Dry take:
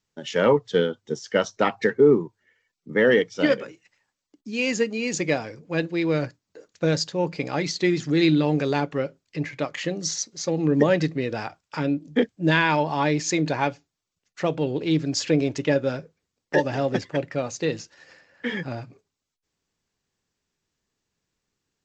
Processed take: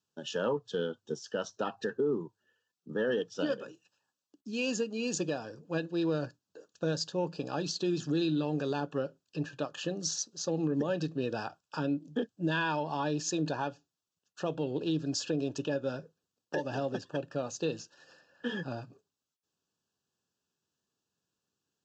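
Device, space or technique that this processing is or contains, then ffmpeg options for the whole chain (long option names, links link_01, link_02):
PA system with an anti-feedback notch: -af "highpass=110,asuperstop=centerf=2100:order=12:qfactor=2.9,alimiter=limit=-16.5dB:level=0:latency=1:release=195,volume=-5.5dB"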